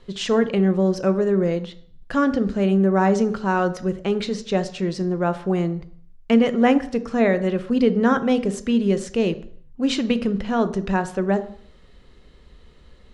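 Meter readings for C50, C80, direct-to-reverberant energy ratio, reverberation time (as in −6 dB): 14.5 dB, 18.0 dB, 11.5 dB, 0.55 s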